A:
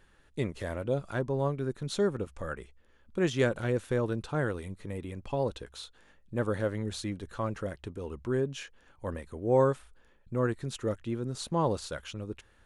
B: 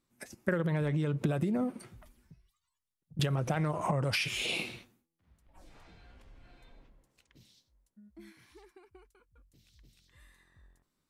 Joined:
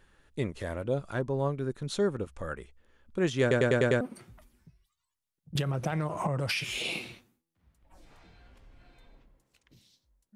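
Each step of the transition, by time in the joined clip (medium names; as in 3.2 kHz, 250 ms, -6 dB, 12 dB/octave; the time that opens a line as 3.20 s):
A
3.41 s: stutter in place 0.10 s, 6 plays
4.01 s: go over to B from 1.65 s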